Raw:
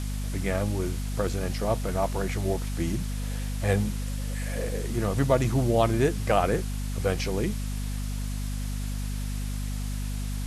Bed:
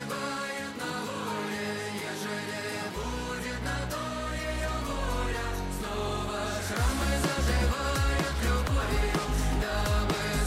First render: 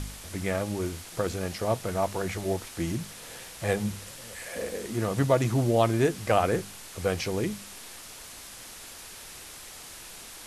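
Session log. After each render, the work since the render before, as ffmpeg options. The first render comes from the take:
-af "bandreject=f=50:t=h:w=4,bandreject=f=100:t=h:w=4,bandreject=f=150:t=h:w=4,bandreject=f=200:t=h:w=4,bandreject=f=250:t=h:w=4"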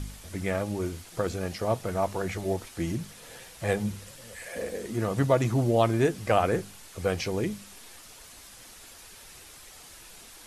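-af "afftdn=nr=6:nf=-45"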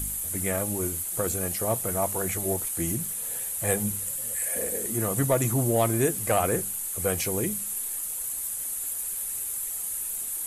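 -af "asoftclip=type=tanh:threshold=-12.5dB,aexciter=amount=13.7:drive=3.3:freq=7.5k"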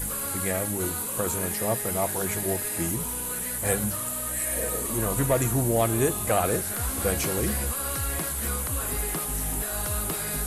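-filter_complex "[1:a]volume=-4.5dB[a];[0:a][a]amix=inputs=2:normalize=0"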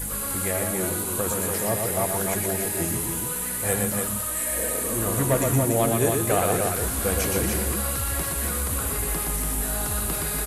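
-af "aecho=1:1:119.5|288.6:0.631|0.562"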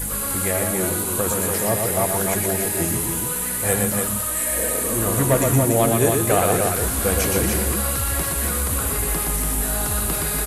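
-af "volume=4dB"

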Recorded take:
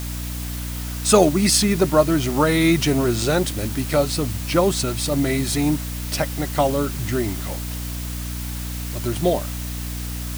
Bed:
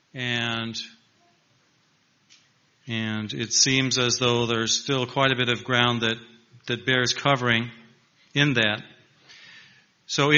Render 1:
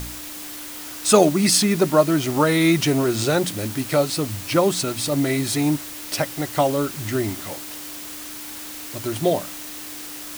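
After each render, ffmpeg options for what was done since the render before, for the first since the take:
-af "bandreject=f=60:t=h:w=4,bandreject=f=120:t=h:w=4,bandreject=f=180:t=h:w=4,bandreject=f=240:t=h:w=4"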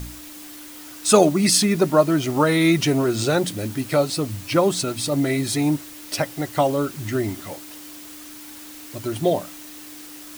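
-af "afftdn=nr=6:nf=-35"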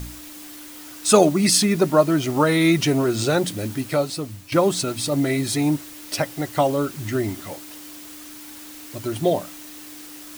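-filter_complex "[0:a]asplit=2[a][b];[a]atrim=end=4.52,asetpts=PTS-STARTPTS,afade=t=out:st=3.73:d=0.79:silence=0.316228[c];[b]atrim=start=4.52,asetpts=PTS-STARTPTS,afade=t=in:d=0.004:c=hsin:silence=0.316228[d];[c][d]concat=n=2:v=0:a=1"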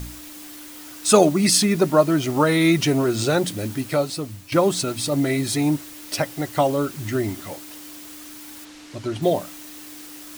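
-filter_complex "[0:a]asplit=3[a][b][c];[a]afade=t=out:st=8.64:d=0.02[d];[b]lowpass=6k,afade=t=in:st=8.64:d=0.02,afade=t=out:st=9.21:d=0.02[e];[c]afade=t=in:st=9.21:d=0.02[f];[d][e][f]amix=inputs=3:normalize=0"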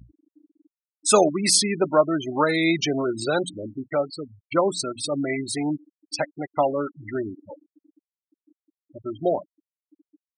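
-af "afftfilt=real='re*gte(hypot(re,im),0.0891)':imag='im*gte(hypot(re,im),0.0891)':win_size=1024:overlap=0.75,highpass=f=430:p=1"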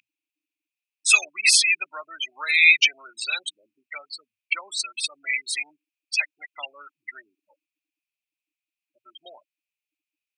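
-af "highpass=f=2.5k:t=q:w=10"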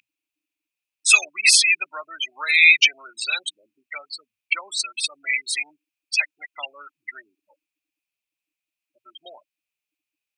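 -af "volume=2.5dB,alimiter=limit=-2dB:level=0:latency=1"

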